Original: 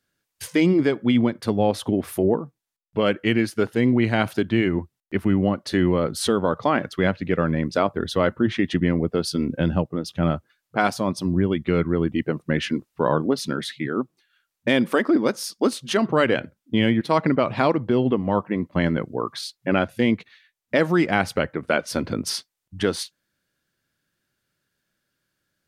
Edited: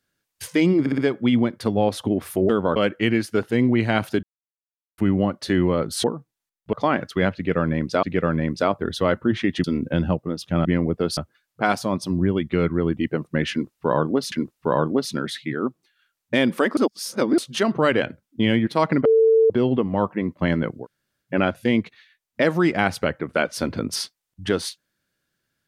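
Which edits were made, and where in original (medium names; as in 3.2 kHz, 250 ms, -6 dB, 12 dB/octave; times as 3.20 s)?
0.80 s: stutter 0.06 s, 4 plays
2.31–3.00 s: swap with 6.28–6.55 s
4.47–5.22 s: mute
7.18–7.85 s: loop, 2 plays
8.79–9.31 s: move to 10.32 s
12.66–13.47 s: loop, 2 plays
15.11–15.72 s: reverse
17.39–17.84 s: bleep 447 Hz -12 dBFS
19.16–19.60 s: room tone, crossfade 0.10 s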